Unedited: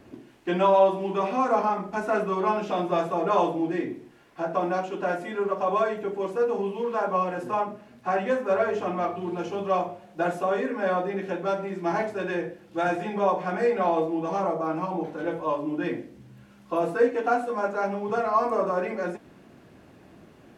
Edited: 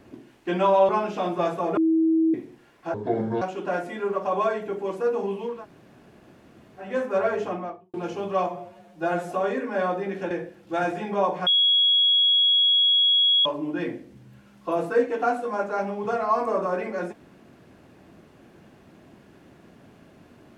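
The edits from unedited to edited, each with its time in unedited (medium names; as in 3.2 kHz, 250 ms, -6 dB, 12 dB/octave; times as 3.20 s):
0.89–2.42 s: delete
3.30–3.87 s: bleep 323 Hz -17 dBFS
4.47–4.77 s: speed 63%
6.90–8.24 s: room tone, crossfade 0.24 s
8.76–9.29 s: studio fade out
9.83–10.39 s: stretch 1.5×
11.38–12.35 s: delete
13.51–15.50 s: bleep 3.33 kHz -16 dBFS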